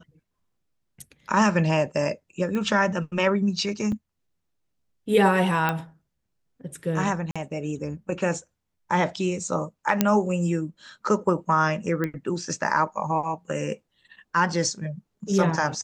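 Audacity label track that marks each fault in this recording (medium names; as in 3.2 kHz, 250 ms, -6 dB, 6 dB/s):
2.550000	2.550000	pop -18 dBFS
3.920000	3.920000	dropout 4.2 ms
5.690000	5.690000	pop -11 dBFS
7.310000	7.360000	dropout 46 ms
10.010000	10.010000	pop -4 dBFS
12.040000	12.040000	pop -15 dBFS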